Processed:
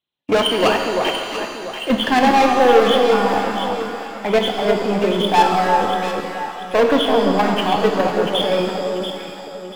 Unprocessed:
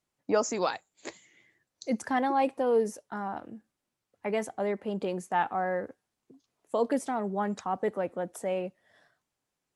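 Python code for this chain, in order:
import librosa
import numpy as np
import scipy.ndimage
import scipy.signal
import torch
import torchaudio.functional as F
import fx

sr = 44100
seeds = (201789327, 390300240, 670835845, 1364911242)

p1 = fx.freq_compress(x, sr, knee_hz=2400.0, ratio=4.0)
p2 = fx.highpass(p1, sr, hz=84.0, slope=6)
p3 = fx.high_shelf(p2, sr, hz=2200.0, db=3.0)
p4 = fx.notch(p3, sr, hz=1300.0, q=14.0)
p5 = fx.leveller(p4, sr, passes=3)
p6 = fx.level_steps(p5, sr, step_db=10)
p7 = fx.leveller(p6, sr, passes=1)
p8 = p7 + fx.echo_alternate(p7, sr, ms=344, hz=1200.0, feedback_pct=56, wet_db=-3, dry=0)
p9 = fx.rev_shimmer(p8, sr, seeds[0], rt60_s=2.0, semitones=7, shimmer_db=-8, drr_db=3.5)
y = F.gain(torch.from_numpy(p9), 5.0).numpy()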